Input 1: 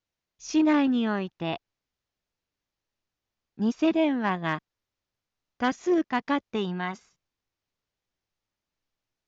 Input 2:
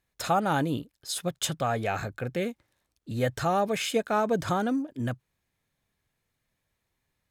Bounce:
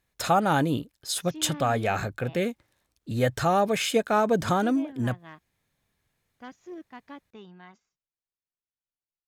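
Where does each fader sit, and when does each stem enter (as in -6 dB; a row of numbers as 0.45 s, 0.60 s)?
-18.0 dB, +3.0 dB; 0.80 s, 0.00 s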